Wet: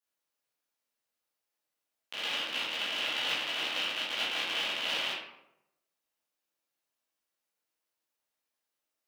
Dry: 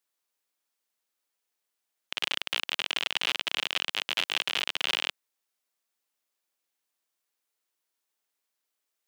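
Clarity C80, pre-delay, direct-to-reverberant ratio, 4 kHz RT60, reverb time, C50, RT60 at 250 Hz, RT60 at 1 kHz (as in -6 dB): 5.0 dB, 11 ms, -10.0 dB, 0.50 s, 0.85 s, 2.0 dB, 0.95 s, 0.80 s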